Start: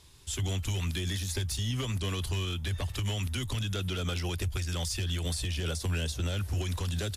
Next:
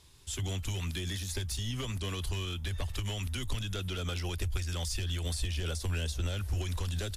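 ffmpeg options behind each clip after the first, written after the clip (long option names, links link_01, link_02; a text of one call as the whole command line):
ffmpeg -i in.wav -af "asubboost=boost=5.5:cutoff=51,volume=-2.5dB" out.wav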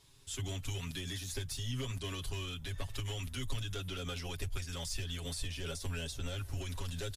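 ffmpeg -i in.wav -af "aecho=1:1:7.3:0.79,volume=-5.5dB" out.wav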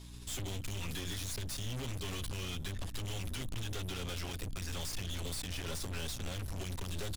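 ffmpeg -i in.wav -af "aeval=exprs='(tanh(316*val(0)+0.65)-tanh(0.65))/316':channel_layout=same,aeval=exprs='val(0)+0.001*(sin(2*PI*60*n/s)+sin(2*PI*2*60*n/s)/2+sin(2*PI*3*60*n/s)/3+sin(2*PI*4*60*n/s)/4+sin(2*PI*5*60*n/s)/5)':channel_layout=same,volume=11.5dB" out.wav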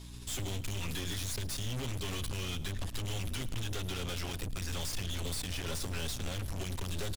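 ffmpeg -i in.wav -af "aecho=1:1:108:0.119,volume=2.5dB" out.wav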